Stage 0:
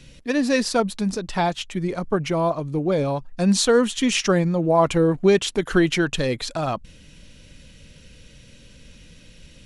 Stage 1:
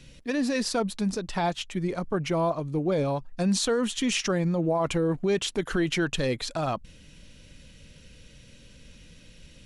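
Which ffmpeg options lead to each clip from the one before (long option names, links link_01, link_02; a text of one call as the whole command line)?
ffmpeg -i in.wav -af "alimiter=limit=-14dB:level=0:latency=1:release=27,volume=-3.5dB" out.wav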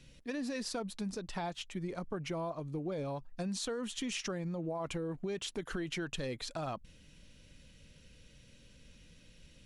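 ffmpeg -i in.wav -af "acompressor=threshold=-26dB:ratio=6,volume=-8dB" out.wav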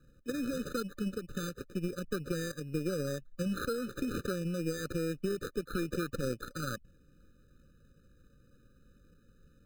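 ffmpeg -i in.wav -filter_complex "[0:a]acrossover=split=160[link_01][link_02];[link_02]acrusher=samples=16:mix=1:aa=0.000001[link_03];[link_01][link_03]amix=inputs=2:normalize=0,aeval=exprs='0.0562*(cos(1*acos(clip(val(0)/0.0562,-1,1)))-cos(1*PI/2))+0.00316*(cos(4*acos(clip(val(0)/0.0562,-1,1)))-cos(4*PI/2))+0.00501*(cos(7*acos(clip(val(0)/0.0562,-1,1)))-cos(7*PI/2))':channel_layout=same,afftfilt=real='re*eq(mod(floor(b*sr/1024/600),2),0)':imag='im*eq(mod(floor(b*sr/1024/600),2),0)':win_size=1024:overlap=0.75,volume=5dB" out.wav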